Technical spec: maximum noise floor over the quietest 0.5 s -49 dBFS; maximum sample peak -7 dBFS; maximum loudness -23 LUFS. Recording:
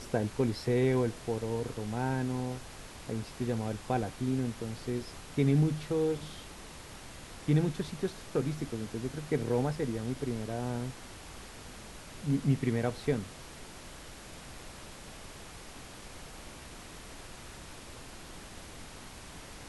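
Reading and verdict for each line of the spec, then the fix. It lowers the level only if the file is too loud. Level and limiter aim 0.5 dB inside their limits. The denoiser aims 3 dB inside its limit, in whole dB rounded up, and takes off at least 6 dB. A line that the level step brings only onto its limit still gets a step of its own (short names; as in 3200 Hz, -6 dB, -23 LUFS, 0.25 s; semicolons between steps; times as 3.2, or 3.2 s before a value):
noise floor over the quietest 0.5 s -47 dBFS: fail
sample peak -15.5 dBFS: OK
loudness -33.0 LUFS: OK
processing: denoiser 6 dB, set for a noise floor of -47 dBFS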